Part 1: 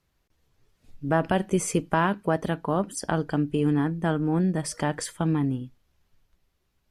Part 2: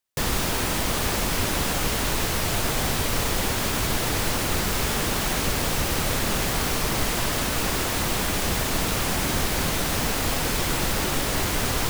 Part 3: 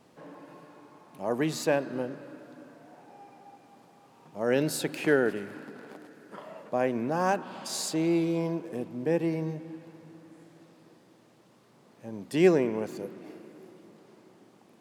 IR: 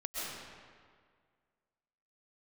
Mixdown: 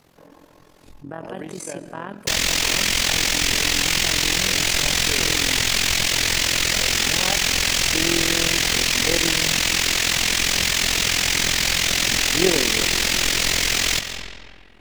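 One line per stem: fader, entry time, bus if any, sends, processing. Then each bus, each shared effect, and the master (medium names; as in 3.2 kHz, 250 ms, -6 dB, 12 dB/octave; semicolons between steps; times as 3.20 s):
-8.5 dB, 0.00 s, send -20 dB, gate -57 dBFS, range -12 dB; bass shelf 140 Hz -10.5 dB; level flattener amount 70%
+2.0 dB, 2.10 s, send -8.5 dB, high-order bell 3.7 kHz +14.5 dB 2.4 oct; saturation -18 dBFS, distortion -10 dB
+3.0 dB, 0.00 s, send -21.5 dB, auto duck -11 dB, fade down 1.80 s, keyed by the first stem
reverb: on, RT60 1.9 s, pre-delay 90 ms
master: AM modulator 43 Hz, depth 65%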